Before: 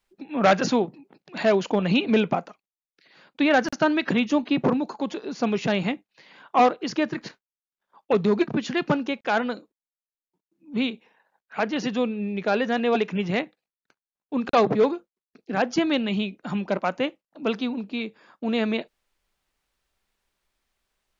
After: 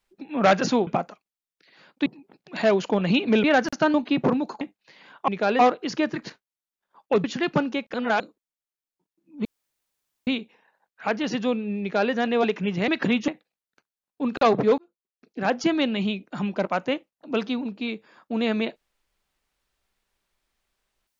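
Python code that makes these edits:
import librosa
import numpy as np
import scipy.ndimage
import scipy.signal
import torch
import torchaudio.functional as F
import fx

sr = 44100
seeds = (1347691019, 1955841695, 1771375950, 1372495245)

y = fx.edit(x, sr, fx.move(start_s=2.25, length_s=1.19, to_s=0.87),
    fx.move(start_s=3.94, length_s=0.4, to_s=13.4),
    fx.cut(start_s=5.01, length_s=0.9),
    fx.cut(start_s=8.23, length_s=0.35),
    fx.reverse_span(start_s=9.28, length_s=0.26),
    fx.insert_room_tone(at_s=10.79, length_s=0.82),
    fx.duplicate(start_s=12.33, length_s=0.31, to_s=6.58),
    fx.fade_in_span(start_s=14.9, length_s=0.69), tone=tone)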